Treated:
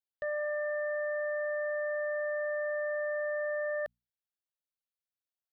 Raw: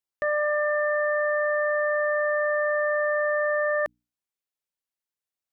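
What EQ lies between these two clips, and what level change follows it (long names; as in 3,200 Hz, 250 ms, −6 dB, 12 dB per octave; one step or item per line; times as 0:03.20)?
parametric band 1,100 Hz −5.5 dB 0.77 octaves
phaser with its sweep stopped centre 1,500 Hz, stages 8
−7.0 dB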